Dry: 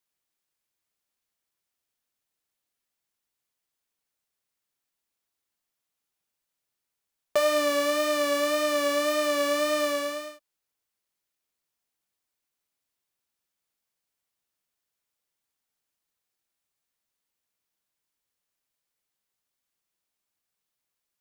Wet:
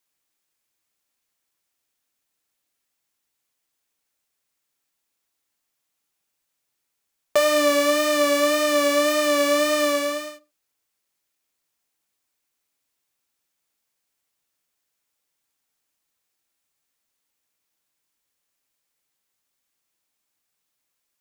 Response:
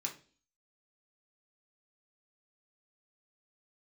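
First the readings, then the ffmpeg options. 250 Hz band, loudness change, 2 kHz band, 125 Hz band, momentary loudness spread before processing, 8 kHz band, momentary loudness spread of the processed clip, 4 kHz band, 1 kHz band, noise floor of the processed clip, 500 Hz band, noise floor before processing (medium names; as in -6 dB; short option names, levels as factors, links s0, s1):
+7.0 dB, +5.5 dB, +5.5 dB, no reading, 6 LU, +7.0 dB, 7 LU, +5.5 dB, +4.5 dB, -78 dBFS, +5.0 dB, -85 dBFS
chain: -filter_complex "[0:a]asplit=2[s0][s1];[1:a]atrim=start_sample=2205,atrim=end_sample=6174[s2];[s1][s2]afir=irnorm=-1:irlink=0,volume=0.335[s3];[s0][s3]amix=inputs=2:normalize=0,volume=1.58"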